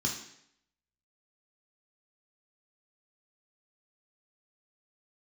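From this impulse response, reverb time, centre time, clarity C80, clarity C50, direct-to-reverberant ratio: 0.70 s, 31 ms, 9.5 dB, 6.0 dB, -1.0 dB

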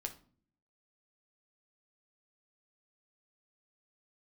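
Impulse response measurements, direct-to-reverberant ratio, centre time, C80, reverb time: 4.0 dB, 9 ms, 18.5 dB, 0.45 s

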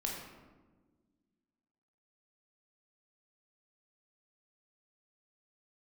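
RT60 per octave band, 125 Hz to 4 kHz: 1.9 s, 2.3 s, 1.6 s, 1.2 s, 0.95 s, 0.70 s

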